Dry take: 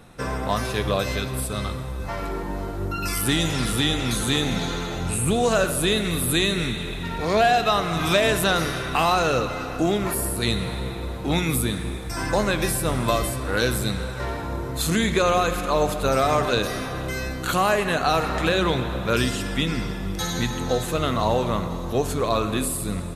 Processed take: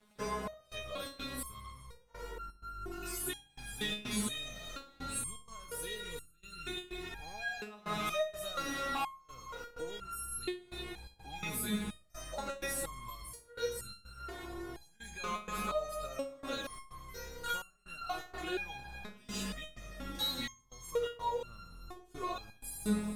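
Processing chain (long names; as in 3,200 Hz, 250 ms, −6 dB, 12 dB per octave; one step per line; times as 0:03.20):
downward compressor, threshold −24 dBFS, peak gain reduction 10 dB
dead-zone distortion −45 dBFS
gate pattern "xxxx..xxx.xx" 126 BPM −24 dB
feedback echo with a low-pass in the loop 67 ms, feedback 45%, low-pass 2,000 Hz, level −13.5 dB
step-sequenced resonator 2.1 Hz 210–1,400 Hz
level +7.5 dB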